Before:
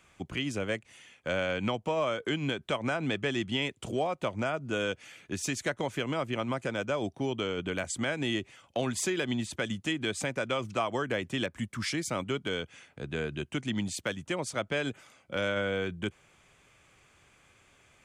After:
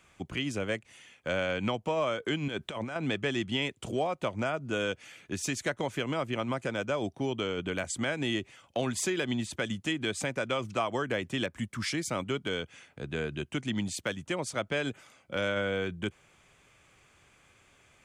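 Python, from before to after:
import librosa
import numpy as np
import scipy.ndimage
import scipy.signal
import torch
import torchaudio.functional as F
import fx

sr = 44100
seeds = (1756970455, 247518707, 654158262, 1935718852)

y = fx.over_compress(x, sr, threshold_db=-36.0, ratio=-1.0, at=(2.48, 2.96))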